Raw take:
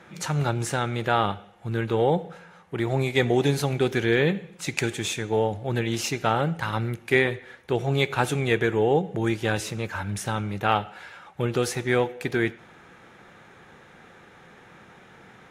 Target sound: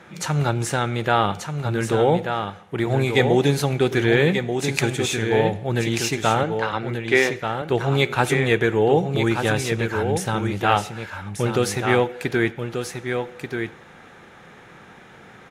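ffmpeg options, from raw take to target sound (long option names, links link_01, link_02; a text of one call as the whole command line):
ffmpeg -i in.wav -filter_complex "[0:a]asettb=1/sr,asplit=3[link_01][link_02][link_03];[link_01]atrim=end=6.434[link_04];[link_02]atrim=start=6.43:end=7.46,asetpts=PTS-STARTPTS,afade=type=in:duration=0.004:curve=qsin,afade=type=out:start_time=1.026:duration=0.004:curve=qsin,highpass=260,lowpass=5000[link_05];[link_03]atrim=start=7.456[link_06];[link_04][link_05]acrossfade=duration=0.004:curve1=hsin:curve2=qsin[link_07];[link_07][link_06]acrossfade=duration=0.004:curve1=qsin:curve2=hsin,asplit=2[link_08][link_09];[link_09]aecho=0:1:1185:0.473[link_10];[link_08][link_10]amix=inputs=2:normalize=0,volume=3.5dB" out.wav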